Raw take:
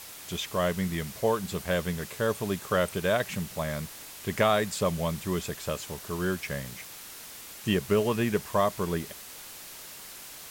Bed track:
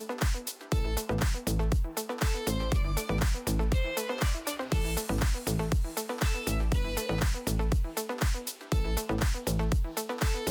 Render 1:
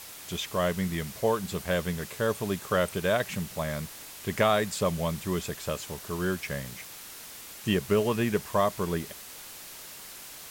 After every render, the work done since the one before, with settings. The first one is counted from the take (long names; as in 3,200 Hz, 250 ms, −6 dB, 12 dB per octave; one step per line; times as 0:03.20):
no processing that can be heard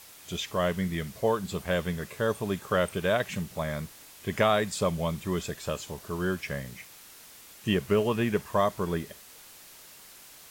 noise reduction from a noise print 6 dB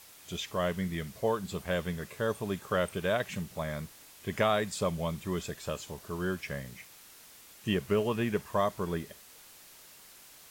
level −3.5 dB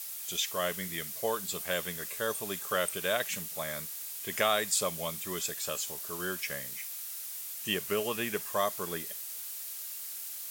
RIAA equalisation recording
notch filter 960 Hz, Q 12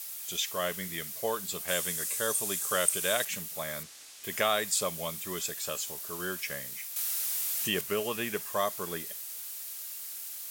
0:01.68–0:03.25: parametric band 8,500 Hz +10.5 dB 1.4 octaves
0:03.83–0:04.24: low-pass filter 6,600 Hz
0:06.96–0:07.81: envelope flattener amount 70%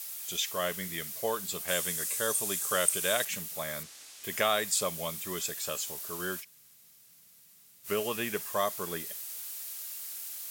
0:06.42–0:07.86: fill with room tone, crossfade 0.06 s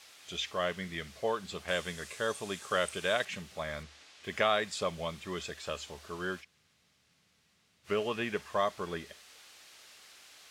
low-pass filter 3,600 Hz 12 dB per octave
parametric band 74 Hz +14 dB 0.26 octaves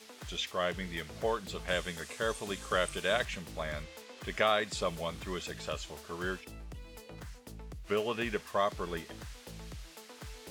mix in bed track −18.5 dB